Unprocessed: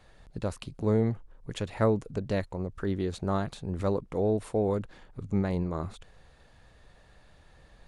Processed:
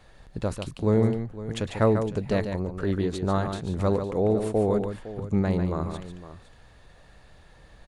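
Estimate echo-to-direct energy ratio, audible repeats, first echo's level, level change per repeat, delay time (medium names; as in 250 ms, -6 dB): -6.5 dB, 2, -7.5 dB, no regular repeats, 145 ms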